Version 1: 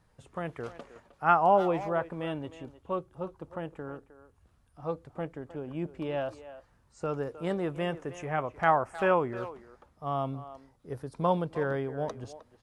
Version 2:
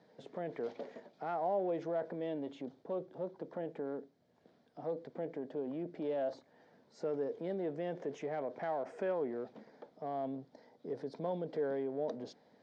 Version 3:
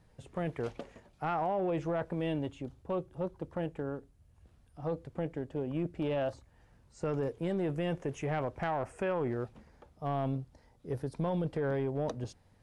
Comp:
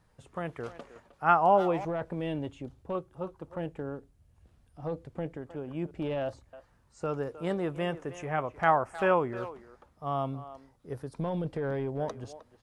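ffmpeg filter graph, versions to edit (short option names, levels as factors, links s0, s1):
-filter_complex "[2:a]asplit=4[s0][s1][s2][s3];[0:a]asplit=5[s4][s5][s6][s7][s8];[s4]atrim=end=1.852[s9];[s0]atrim=start=1.848:end=2.952[s10];[s5]atrim=start=2.948:end=3.572[s11];[s1]atrim=start=3.568:end=5.372[s12];[s6]atrim=start=5.368:end=5.912[s13];[s2]atrim=start=5.908:end=6.532[s14];[s7]atrim=start=6.528:end=11.192[s15];[s3]atrim=start=11.188:end=12.002[s16];[s8]atrim=start=11.998[s17];[s9][s10]acrossfade=d=0.004:c1=hsin:c2=hsin[s18];[s18][s11]acrossfade=d=0.004:c1=hsin:c2=hsin[s19];[s19][s12]acrossfade=d=0.004:c1=hsin:c2=hsin[s20];[s20][s13]acrossfade=d=0.004:c1=hsin:c2=hsin[s21];[s21][s14]acrossfade=d=0.004:c1=hsin:c2=hsin[s22];[s22][s15]acrossfade=d=0.004:c1=hsin:c2=hsin[s23];[s23][s16]acrossfade=d=0.004:c1=hsin:c2=hsin[s24];[s24][s17]acrossfade=d=0.004:c1=hsin:c2=hsin"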